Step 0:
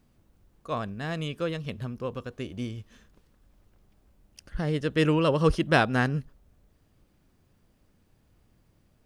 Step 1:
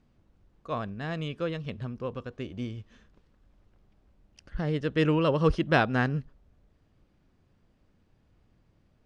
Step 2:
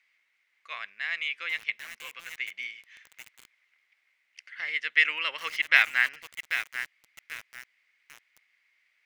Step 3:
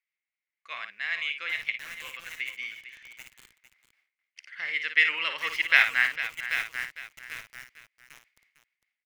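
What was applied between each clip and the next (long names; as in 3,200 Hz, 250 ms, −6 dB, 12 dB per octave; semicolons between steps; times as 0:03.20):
high-frequency loss of the air 100 metres; level −1 dB
high-pass with resonance 2,100 Hz, resonance Q 9.2; feedback echo at a low word length 788 ms, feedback 35%, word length 6 bits, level −9 dB; level +2 dB
noise gate with hold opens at −54 dBFS; low-shelf EQ 170 Hz +9 dB; on a send: multi-tap delay 55/453 ms −8/−12.5 dB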